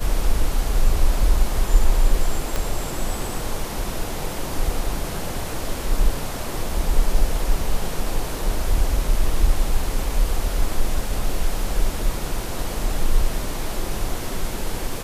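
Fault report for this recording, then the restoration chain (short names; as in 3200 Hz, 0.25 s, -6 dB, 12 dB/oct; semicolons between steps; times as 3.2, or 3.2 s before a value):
2.56 pop -9 dBFS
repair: de-click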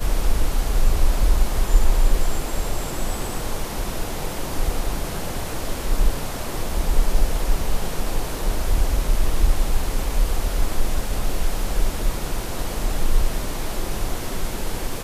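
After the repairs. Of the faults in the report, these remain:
2.56 pop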